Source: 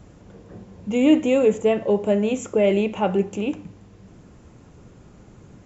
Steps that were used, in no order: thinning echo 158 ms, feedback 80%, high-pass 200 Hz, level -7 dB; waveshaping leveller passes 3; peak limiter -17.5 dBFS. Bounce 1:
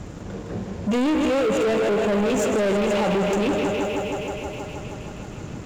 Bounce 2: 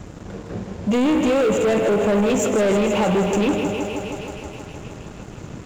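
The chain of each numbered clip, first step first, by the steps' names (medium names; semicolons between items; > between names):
thinning echo > peak limiter > waveshaping leveller; peak limiter > thinning echo > waveshaping leveller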